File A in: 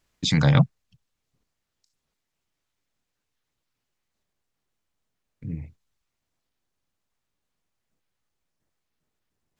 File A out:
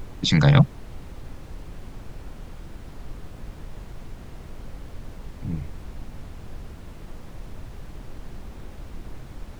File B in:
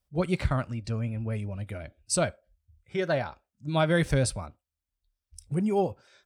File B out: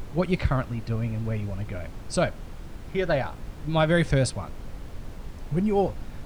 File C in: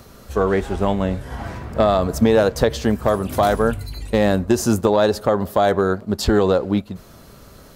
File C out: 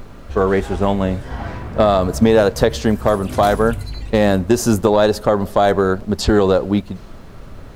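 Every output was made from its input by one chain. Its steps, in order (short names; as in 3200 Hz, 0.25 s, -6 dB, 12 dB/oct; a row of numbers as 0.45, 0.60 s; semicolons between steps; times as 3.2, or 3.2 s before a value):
low-pass opened by the level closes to 2400 Hz, open at -16.5 dBFS; added noise brown -38 dBFS; gain +2.5 dB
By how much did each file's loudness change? 0.0, +2.0, +2.5 LU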